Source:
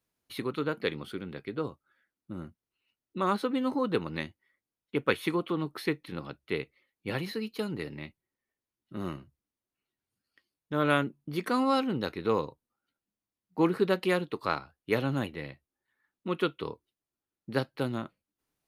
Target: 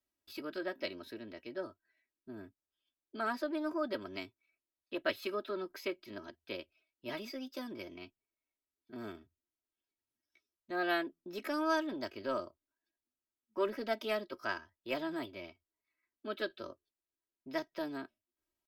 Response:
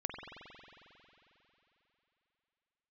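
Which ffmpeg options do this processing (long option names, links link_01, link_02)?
-filter_complex "[0:a]aecho=1:1:3.7:0.75,acrossover=split=300|4300[link_01][link_02][link_03];[link_01]asoftclip=type=tanh:threshold=-32.5dB[link_04];[link_04][link_02][link_03]amix=inputs=3:normalize=0,asetrate=52444,aresample=44100,atempo=0.840896,volume=-9dB"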